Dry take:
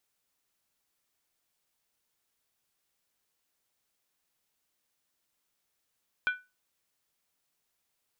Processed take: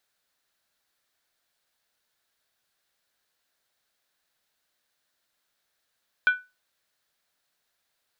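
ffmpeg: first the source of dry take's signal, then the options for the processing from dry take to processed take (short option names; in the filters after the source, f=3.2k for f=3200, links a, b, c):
-f lavfi -i "aevalsrc='0.0841*pow(10,-3*t/0.25)*sin(2*PI*1490*t)+0.0335*pow(10,-3*t/0.198)*sin(2*PI*2375.1*t)+0.0133*pow(10,-3*t/0.171)*sin(2*PI*3182.6*t)+0.00531*pow(10,-3*t/0.165)*sin(2*PI*3421*t)+0.00211*pow(10,-3*t/0.153)*sin(2*PI*3953*t)':d=0.63:s=44100"
-af "equalizer=f=630:t=o:w=0.67:g=6,equalizer=f=1.6k:t=o:w=0.67:g=9,equalizer=f=4k:t=o:w=0.67:g=7"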